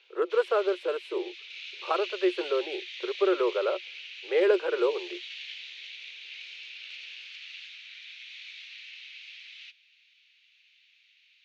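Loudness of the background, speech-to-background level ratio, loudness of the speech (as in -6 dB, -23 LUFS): -40.5 LUFS, 12.0 dB, -28.5 LUFS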